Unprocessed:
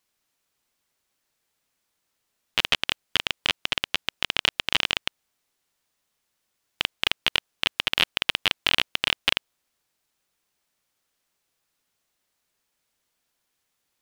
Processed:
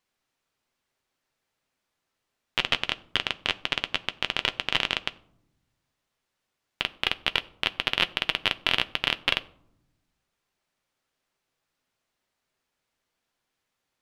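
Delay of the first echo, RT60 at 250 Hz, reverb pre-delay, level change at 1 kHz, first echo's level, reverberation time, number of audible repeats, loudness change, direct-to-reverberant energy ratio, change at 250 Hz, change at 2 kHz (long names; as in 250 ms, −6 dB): no echo audible, 1.5 s, 8 ms, 0.0 dB, no echo audible, 0.75 s, no echo audible, −2.0 dB, 11.0 dB, +0.5 dB, −1.5 dB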